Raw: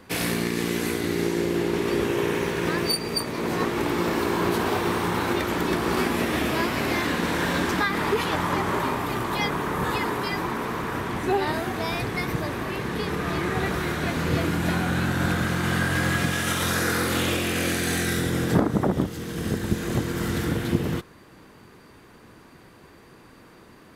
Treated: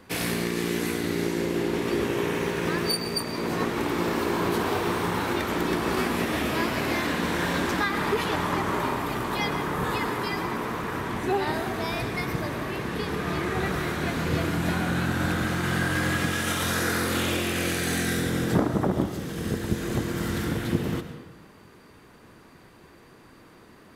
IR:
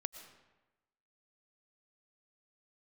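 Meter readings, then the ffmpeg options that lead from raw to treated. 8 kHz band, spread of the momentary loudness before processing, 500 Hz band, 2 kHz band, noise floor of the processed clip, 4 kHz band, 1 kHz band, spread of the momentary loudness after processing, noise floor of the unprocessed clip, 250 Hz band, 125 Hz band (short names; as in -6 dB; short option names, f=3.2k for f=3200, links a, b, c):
-2.0 dB, 4 LU, -1.5 dB, -1.5 dB, -52 dBFS, -1.5 dB, -1.5 dB, 4 LU, -50 dBFS, -1.5 dB, -2.0 dB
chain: -filter_complex "[1:a]atrim=start_sample=2205[a];[0:a][a]afir=irnorm=-1:irlink=0"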